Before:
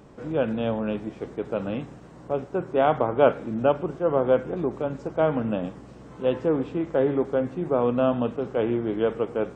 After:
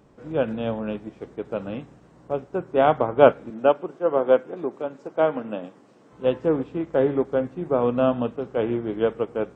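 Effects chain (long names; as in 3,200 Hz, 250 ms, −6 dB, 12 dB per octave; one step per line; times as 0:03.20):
0:03.50–0:06.13: high-pass filter 250 Hz 12 dB per octave
expander for the loud parts 1.5 to 1, over −36 dBFS
level +5 dB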